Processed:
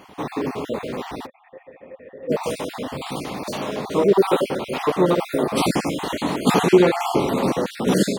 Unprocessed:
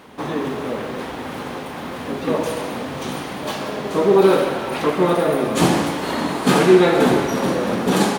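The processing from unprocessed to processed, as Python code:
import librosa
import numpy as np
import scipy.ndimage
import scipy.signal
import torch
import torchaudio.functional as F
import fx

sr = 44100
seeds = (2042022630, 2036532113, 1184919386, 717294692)

y = fx.spec_dropout(x, sr, seeds[0], share_pct=36)
y = fx.formant_cascade(y, sr, vowel='e', at=(1.25, 2.29), fade=0.02)
y = fx.peak_eq(y, sr, hz=1600.0, db=-6.0, octaves=0.39)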